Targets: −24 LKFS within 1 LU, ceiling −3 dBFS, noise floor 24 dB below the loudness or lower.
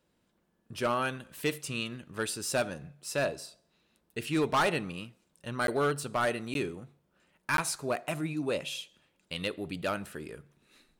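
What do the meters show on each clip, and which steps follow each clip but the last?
share of clipped samples 0.8%; peaks flattened at −22.0 dBFS; number of dropouts 3; longest dropout 12 ms; integrated loudness −32.5 LKFS; sample peak −22.0 dBFS; target loudness −24.0 LKFS
→ clipped peaks rebuilt −22 dBFS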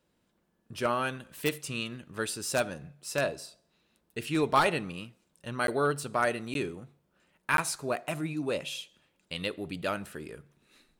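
share of clipped samples 0.0%; number of dropouts 3; longest dropout 12 ms
→ repair the gap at 0:05.67/0:06.54/0:07.57, 12 ms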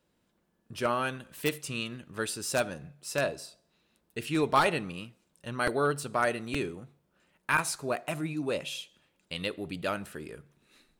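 number of dropouts 0; integrated loudness −31.5 LKFS; sample peak −13.0 dBFS; target loudness −24.0 LKFS
→ level +7.5 dB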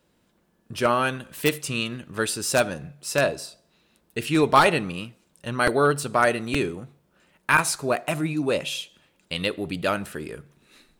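integrated loudness −24.0 LKFS; sample peak −5.5 dBFS; background noise floor −67 dBFS

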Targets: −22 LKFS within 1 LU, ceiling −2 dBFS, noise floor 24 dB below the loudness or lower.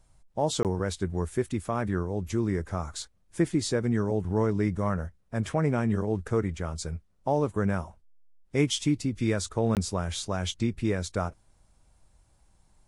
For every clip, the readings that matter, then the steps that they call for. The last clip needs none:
number of dropouts 2; longest dropout 18 ms; integrated loudness −29.0 LKFS; sample peak −12.0 dBFS; target loudness −22.0 LKFS
→ repair the gap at 0:00.63/0:09.75, 18 ms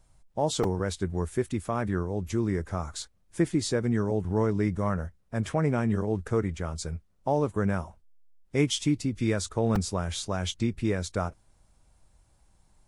number of dropouts 0; integrated loudness −29.0 LKFS; sample peak −12.0 dBFS; target loudness −22.0 LKFS
→ level +7 dB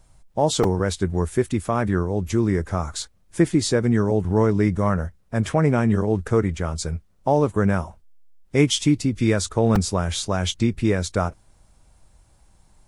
integrated loudness −22.0 LKFS; sample peak −5.0 dBFS; background noise floor −57 dBFS

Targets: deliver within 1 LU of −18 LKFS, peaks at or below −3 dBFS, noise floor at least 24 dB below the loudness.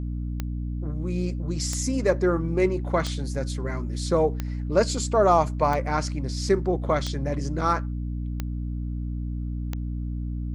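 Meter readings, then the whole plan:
number of clicks 8; mains hum 60 Hz; hum harmonics up to 300 Hz; level of the hum −27 dBFS; integrated loudness −26.5 LKFS; sample peak −7.0 dBFS; target loudness −18.0 LKFS
→ click removal
mains-hum notches 60/120/180/240/300 Hz
level +8.5 dB
brickwall limiter −3 dBFS

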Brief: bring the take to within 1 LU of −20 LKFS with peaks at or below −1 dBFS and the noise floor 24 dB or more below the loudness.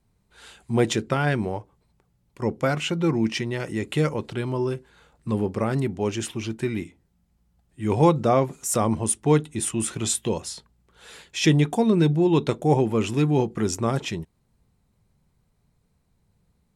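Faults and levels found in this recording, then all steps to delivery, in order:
integrated loudness −24.0 LKFS; sample peak −6.0 dBFS; target loudness −20.0 LKFS
→ level +4 dB

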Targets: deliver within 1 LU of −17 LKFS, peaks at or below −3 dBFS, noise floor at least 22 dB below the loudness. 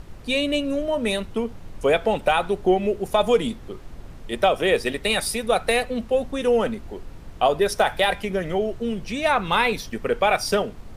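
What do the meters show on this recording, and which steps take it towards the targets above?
background noise floor −41 dBFS; target noise floor −45 dBFS; integrated loudness −22.5 LKFS; sample peak −6.0 dBFS; target loudness −17.0 LKFS
→ noise reduction from a noise print 6 dB
level +5.5 dB
brickwall limiter −3 dBFS

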